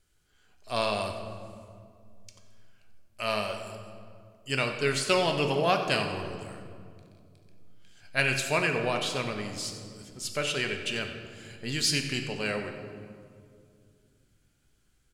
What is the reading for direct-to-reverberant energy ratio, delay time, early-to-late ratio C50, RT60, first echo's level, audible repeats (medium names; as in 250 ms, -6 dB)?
4.0 dB, 92 ms, 6.5 dB, 2.3 s, -14.0 dB, 1